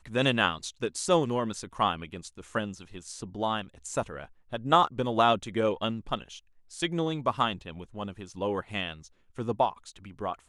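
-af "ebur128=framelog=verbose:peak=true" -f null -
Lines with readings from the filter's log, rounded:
Integrated loudness:
  I:         -29.5 LUFS
  Threshold: -40.2 LUFS
Loudness range:
  LRA:         4.9 LU
  Threshold: -50.2 LUFS
  LRA low:   -33.0 LUFS
  LRA high:  -28.2 LUFS
True peak:
  Peak:       -6.8 dBFS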